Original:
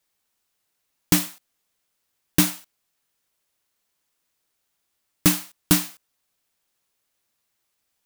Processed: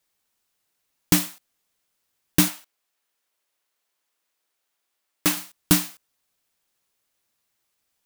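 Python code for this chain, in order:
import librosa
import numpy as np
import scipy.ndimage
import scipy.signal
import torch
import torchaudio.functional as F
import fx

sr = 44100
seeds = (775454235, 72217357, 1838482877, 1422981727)

y = fx.bass_treble(x, sr, bass_db=-13, treble_db=-3, at=(2.48, 5.37))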